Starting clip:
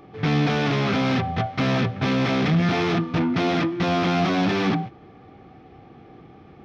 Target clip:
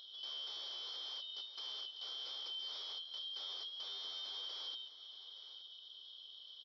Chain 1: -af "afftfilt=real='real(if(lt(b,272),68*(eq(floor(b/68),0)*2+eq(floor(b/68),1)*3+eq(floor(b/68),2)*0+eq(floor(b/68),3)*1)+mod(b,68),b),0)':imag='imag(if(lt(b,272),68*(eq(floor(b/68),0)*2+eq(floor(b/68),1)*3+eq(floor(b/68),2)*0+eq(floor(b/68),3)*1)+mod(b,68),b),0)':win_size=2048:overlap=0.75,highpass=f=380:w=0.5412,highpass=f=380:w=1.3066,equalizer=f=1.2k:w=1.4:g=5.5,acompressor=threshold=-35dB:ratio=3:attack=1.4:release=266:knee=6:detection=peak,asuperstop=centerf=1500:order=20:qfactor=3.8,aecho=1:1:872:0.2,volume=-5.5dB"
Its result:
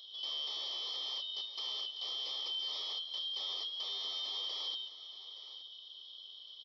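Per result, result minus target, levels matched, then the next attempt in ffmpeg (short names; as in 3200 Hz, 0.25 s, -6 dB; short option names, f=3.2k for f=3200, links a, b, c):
compressor: peak gain reduction -6 dB; 2000 Hz band -3.0 dB
-af "afftfilt=real='real(if(lt(b,272),68*(eq(floor(b/68),0)*2+eq(floor(b/68),1)*3+eq(floor(b/68),2)*0+eq(floor(b/68),3)*1)+mod(b,68),b),0)':imag='imag(if(lt(b,272),68*(eq(floor(b/68),0)*2+eq(floor(b/68),1)*3+eq(floor(b/68),2)*0+eq(floor(b/68),3)*1)+mod(b,68),b),0)':win_size=2048:overlap=0.75,highpass=f=380:w=0.5412,highpass=f=380:w=1.3066,equalizer=f=1.2k:w=1.4:g=5.5,acompressor=threshold=-44dB:ratio=3:attack=1.4:release=266:knee=6:detection=peak,asuperstop=centerf=1500:order=20:qfactor=3.8,aecho=1:1:872:0.2,volume=-5.5dB"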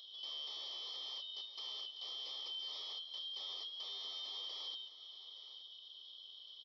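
2000 Hz band -2.5 dB
-af "afftfilt=real='real(if(lt(b,272),68*(eq(floor(b/68),0)*2+eq(floor(b/68),1)*3+eq(floor(b/68),2)*0+eq(floor(b/68),3)*1)+mod(b,68),b),0)':imag='imag(if(lt(b,272),68*(eq(floor(b/68),0)*2+eq(floor(b/68),1)*3+eq(floor(b/68),2)*0+eq(floor(b/68),3)*1)+mod(b,68),b),0)':win_size=2048:overlap=0.75,highpass=f=380:w=0.5412,highpass=f=380:w=1.3066,equalizer=f=1.2k:w=1.4:g=5.5,acompressor=threshold=-44dB:ratio=3:attack=1.4:release=266:knee=6:detection=peak,aecho=1:1:872:0.2,volume=-5.5dB"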